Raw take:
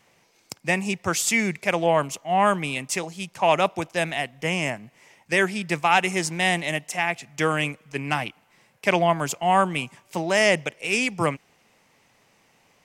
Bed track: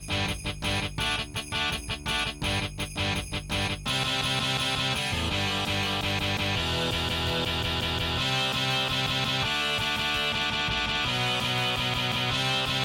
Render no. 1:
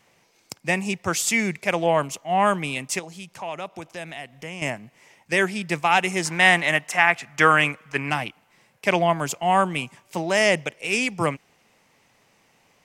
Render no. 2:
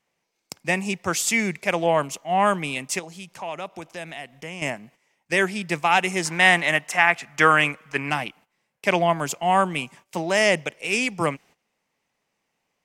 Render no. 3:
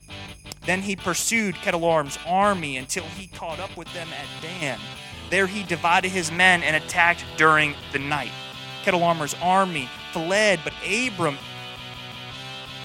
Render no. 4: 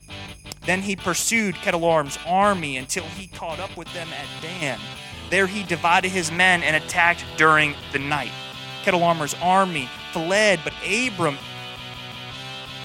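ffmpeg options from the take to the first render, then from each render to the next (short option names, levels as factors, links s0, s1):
-filter_complex "[0:a]asettb=1/sr,asplit=3[s0][s1][s2];[s0]atrim=end=2.994[s3];[s1]atrim=start=2.99:end=4.62,asetpts=PTS-STARTPTS,afade=t=in:d=0.004:c=qsin,afade=t=out:st=1.626:d=0.004:c=qsin,acompressor=threshold=0.0126:ratio=2:attack=3.2:release=140:knee=1:detection=peak[s4];[s2]atrim=start=4.616[s5];[s3][s4]acrossfade=d=0.004:c1=hsin:c2=qsin[s6];[s6][s5]acrossfade=d=0.004:c1=qsin:c2=hsin,asettb=1/sr,asplit=3[s7][s8][s9];[s7]atrim=end=6.254[s10];[s8]atrim=start=6.25:end=8.1,asetpts=PTS-STARTPTS,afade=t=in:d=0.004:c=qsin,afade=t=out:st=1.846:d=0.004:c=qsin,equalizer=f=1400:w=0.85:g=11[s11];[s9]atrim=start=8.096[s12];[s10][s11]acrossfade=d=0.004:c1=hsin:c2=qsin[s13];[s13][s12]acrossfade=d=0.004:c1=qsin:c2=hsin"
-af "agate=range=0.178:threshold=0.00355:ratio=16:detection=peak,equalizer=f=110:w=3.1:g=-7"
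-filter_complex "[1:a]volume=0.335[s0];[0:a][s0]amix=inputs=2:normalize=0"
-af "volume=1.19,alimiter=limit=0.708:level=0:latency=1"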